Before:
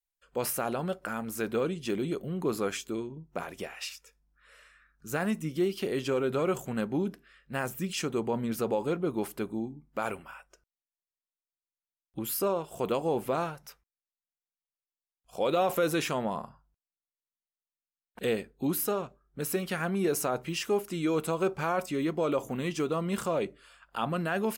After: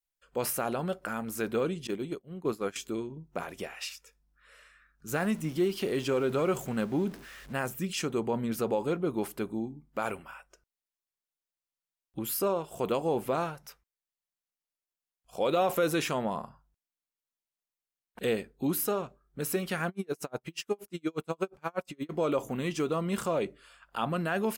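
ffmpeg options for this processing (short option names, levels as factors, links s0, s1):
-filter_complex "[0:a]asettb=1/sr,asplit=3[s0][s1][s2];[s0]atrim=end=1.874[s3];[s1]atrim=start=1.87:end=2.76,asetpts=PTS-STARTPTS,afade=t=in:d=0.004:c=qsin,afade=t=out:st=0.886:d=0.004:c=qsin,agate=range=0.0224:threshold=0.0447:ratio=3:release=100:detection=peak[s4];[s2]atrim=start=2.756[s5];[s3][s4]acrossfade=d=0.004:c1=hsin:c2=qsin[s6];[s6][s5]acrossfade=d=0.004:c1=qsin:c2=hsin,asettb=1/sr,asplit=3[s7][s8][s9];[s7]atrim=end=5.084[s10];[s8]atrim=start=5.08:end=7.53,asetpts=PTS-STARTPTS,afade=t=in:d=0.004:c=qsin,afade=t=out:st=2.446:d=0.004:c=qsin,aeval=exprs='val(0)+0.5*0.00596*sgn(val(0))':c=same[s11];[s9]atrim=start=7.526[s12];[s10][s11]acrossfade=d=0.004:c1=hsin:c2=qsin[s13];[s13][s12]acrossfade=d=0.004:c1=qsin:c2=hsin,asplit=3[s14][s15][s16];[s14]afade=t=out:st=19.88:d=0.02[s17];[s15]aeval=exprs='val(0)*pow(10,-39*(0.5-0.5*cos(2*PI*8.4*n/s))/20)':c=same,afade=t=in:st=19.88:d=0.02,afade=t=out:st=22.09:d=0.02[s18];[s16]afade=t=in:st=22.09:d=0.02[s19];[s17][s18][s19]amix=inputs=3:normalize=0"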